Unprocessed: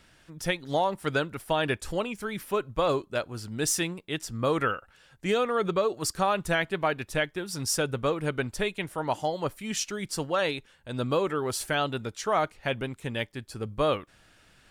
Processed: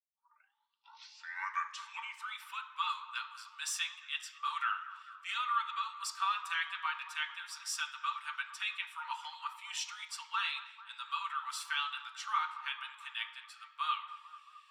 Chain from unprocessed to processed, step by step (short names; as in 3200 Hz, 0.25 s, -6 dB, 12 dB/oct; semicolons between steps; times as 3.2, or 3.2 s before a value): tape start at the beginning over 2.36 s; rippled Chebyshev high-pass 880 Hz, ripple 9 dB; dark delay 0.221 s, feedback 64%, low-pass 1700 Hz, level -13.5 dB; reverb RT60 0.65 s, pre-delay 3 ms, DRR 2 dB; spectral noise reduction 13 dB; high shelf 3800 Hz -9.5 dB; gain +2 dB